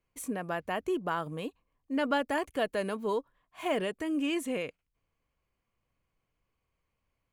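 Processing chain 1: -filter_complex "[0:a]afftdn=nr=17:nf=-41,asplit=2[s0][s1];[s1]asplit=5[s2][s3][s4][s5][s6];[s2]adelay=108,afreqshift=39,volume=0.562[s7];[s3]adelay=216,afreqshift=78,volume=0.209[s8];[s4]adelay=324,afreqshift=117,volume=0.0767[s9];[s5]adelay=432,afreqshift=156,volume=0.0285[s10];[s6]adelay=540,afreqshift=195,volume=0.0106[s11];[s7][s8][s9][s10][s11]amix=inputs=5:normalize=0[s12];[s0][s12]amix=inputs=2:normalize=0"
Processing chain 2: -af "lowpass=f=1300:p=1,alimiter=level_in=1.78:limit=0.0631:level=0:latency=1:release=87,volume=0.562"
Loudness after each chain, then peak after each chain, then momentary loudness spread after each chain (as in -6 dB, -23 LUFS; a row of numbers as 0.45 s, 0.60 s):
-32.0 LUFS, -38.5 LUFS; -15.5 dBFS, -29.0 dBFS; 9 LU, 6 LU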